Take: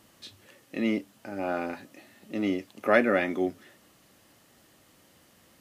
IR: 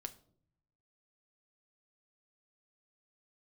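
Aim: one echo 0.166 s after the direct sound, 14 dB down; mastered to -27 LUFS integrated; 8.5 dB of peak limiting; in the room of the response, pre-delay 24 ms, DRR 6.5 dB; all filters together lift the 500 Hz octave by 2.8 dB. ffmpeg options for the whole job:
-filter_complex "[0:a]equalizer=f=500:t=o:g=3.5,alimiter=limit=-15dB:level=0:latency=1,aecho=1:1:166:0.2,asplit=2[a][b];[1:a]atrim=start_sample=2205,adelay=24[c];[b][c]afir=irnorm=-1:irlink=0,volume=-3dB[d];[a][d]amix=inputs=2:normalize=0,volume=1.5dB"

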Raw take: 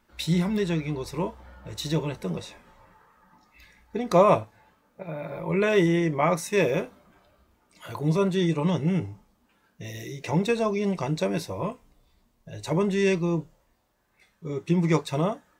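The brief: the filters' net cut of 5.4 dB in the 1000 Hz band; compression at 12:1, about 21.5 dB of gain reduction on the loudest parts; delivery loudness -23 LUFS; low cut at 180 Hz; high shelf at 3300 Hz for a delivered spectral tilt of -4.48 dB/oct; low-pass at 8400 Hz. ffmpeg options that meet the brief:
-af "highpass=180,lowpass=8.4k,equalizer=f=1k:t=o:g=-7.5,highshelf=f=3.3k:g=7,acompressor=threshold=-38dB:ratio=12,volume=19.5dB"

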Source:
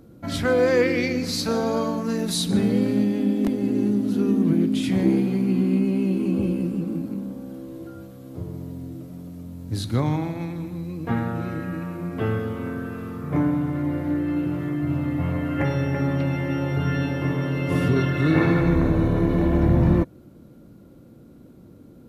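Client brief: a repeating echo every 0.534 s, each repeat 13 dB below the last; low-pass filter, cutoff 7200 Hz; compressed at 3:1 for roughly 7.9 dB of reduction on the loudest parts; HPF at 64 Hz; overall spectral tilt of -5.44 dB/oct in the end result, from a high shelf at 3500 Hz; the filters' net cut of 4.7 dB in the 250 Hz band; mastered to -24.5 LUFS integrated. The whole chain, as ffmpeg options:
-af "highpass=64,lowpass=7.2k,equalizer=f=250:t=o:g=-6.5,highshelf=f=3.5k:g=7,acompressor=threshold=-27dB:ratio=3,aecho=1:1:534|1068|1602:0.224|0.0493|0.0108,volume=6dB"

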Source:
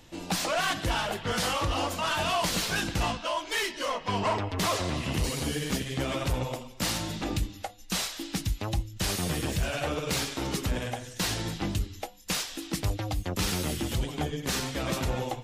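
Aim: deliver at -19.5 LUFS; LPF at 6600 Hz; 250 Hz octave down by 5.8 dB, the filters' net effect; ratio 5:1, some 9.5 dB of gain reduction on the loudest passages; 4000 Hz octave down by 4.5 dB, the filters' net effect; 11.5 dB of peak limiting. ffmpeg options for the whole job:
-af "lowpass=6.6k,equalizer=f=250:t=o:g=-8.5,equalizer=f=4k:t=o:g=-5.5,acompressor=threshold=-35dB:ratio=5,volume=23dB,alimiter=limit=-11dB:level=0:latency=1"

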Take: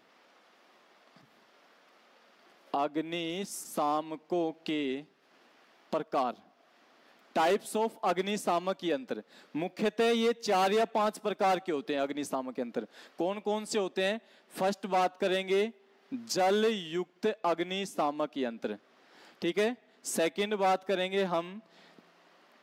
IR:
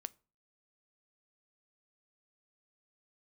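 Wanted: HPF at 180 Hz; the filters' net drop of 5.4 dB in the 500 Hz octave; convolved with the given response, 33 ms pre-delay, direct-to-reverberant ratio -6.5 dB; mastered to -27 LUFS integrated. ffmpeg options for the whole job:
-filter_complex "[0:a]highpass=180,equalizer=f=500:t=o:g=-7,asplit=2[a][b];[1:a]atrim=start_sample=2205,adelay=33[c];[b][c]afir=irnorm=-1:irlink=0,volume=10.5dB[d];[a][d]amix=inputs=2:normalize=0"

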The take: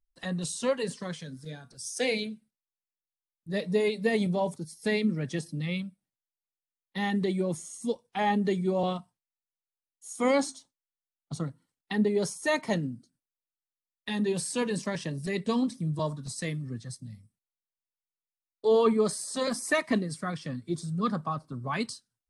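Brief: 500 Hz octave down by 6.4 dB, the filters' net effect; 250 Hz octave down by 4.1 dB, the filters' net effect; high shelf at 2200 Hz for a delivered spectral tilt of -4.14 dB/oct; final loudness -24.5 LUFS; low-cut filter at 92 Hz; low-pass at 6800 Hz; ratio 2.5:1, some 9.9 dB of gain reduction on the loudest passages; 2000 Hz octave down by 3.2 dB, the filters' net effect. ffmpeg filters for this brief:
-af "highpass=92,lowpass=6.8k,equalizer=f=250:t=o:g=-4,equalizer=f=500:t=o:g=-6.5,equalizer=f=2k:t=o:g=-5.5,highshelf=f=2.2k:g=4.5,acompressor=threshold=-40dB:ratio=2.5,volume=16.5dB"

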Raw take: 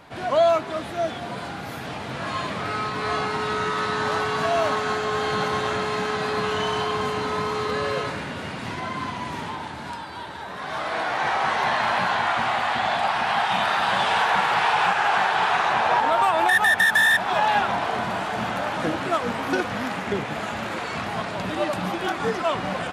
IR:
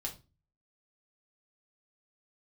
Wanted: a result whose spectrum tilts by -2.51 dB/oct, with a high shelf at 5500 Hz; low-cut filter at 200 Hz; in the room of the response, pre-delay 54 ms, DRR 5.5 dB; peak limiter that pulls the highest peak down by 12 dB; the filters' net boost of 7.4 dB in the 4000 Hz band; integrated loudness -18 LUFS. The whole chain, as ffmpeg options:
-filter_complex "[0:a]highpass=200,equalizer=f=4k:t=o:g=8,highshelf=f=5.5k:g=3.5,alimiter=limit=-17.5dB:level=0:latency=1,asplit=2[a][b];[1:a]atrim=start_sample=2205,adelay=54[c];[b][c]afir=irnorm=-1:irlink=0,volume=-5dB[d];[a][d]amix=inputs=2:normalize=0,volume=7dB"

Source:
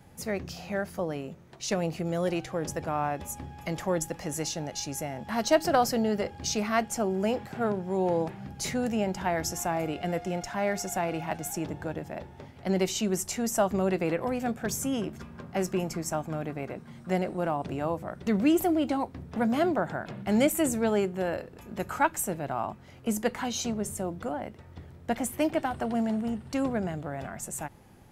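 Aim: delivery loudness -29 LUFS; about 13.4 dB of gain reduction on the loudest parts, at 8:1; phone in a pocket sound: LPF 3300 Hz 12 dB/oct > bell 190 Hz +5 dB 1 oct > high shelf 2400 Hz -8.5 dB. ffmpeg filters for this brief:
-af "acompressor=threshold=-32dB:ratio=8,lowpass=3.3k,equalizer=f=190:t=o:w=1:g=5,highshelf=f=2.4k:g=-8.5,volume=7dB"

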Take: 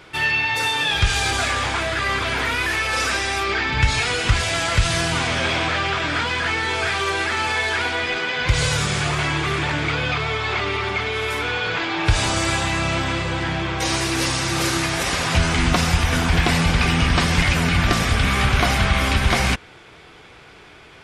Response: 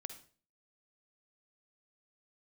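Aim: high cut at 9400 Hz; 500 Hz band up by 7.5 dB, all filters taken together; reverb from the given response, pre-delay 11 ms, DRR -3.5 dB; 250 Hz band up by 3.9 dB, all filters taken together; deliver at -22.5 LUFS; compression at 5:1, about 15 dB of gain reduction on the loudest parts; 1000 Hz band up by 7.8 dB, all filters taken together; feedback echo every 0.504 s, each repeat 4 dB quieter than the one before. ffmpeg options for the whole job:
-filter_complex "[0:a]lowpass=9.4k,equalizer=f=250:t=o:g=3,equalizer=f=500:t=o:g=6.5,equalizer=f=1k:t=o:g=8,acompressor=threshold=-27dB:ratio=5,aecho=1:1:504|1008|1512|2016|2520|3024|3528|4032|4536:0.631|0.398|0.25|0.158|0.0994|0.0626|0.0394|0.0249|0.0157,asplit=2[a][b];[1:a]atrim=start_sample=2205,adelay=11[c];[b][c]afir=irnorm=-1:irlink=0,volume=7dB[d];[a][d]amix=inputs=2:normalize=0,volume=-1dB"

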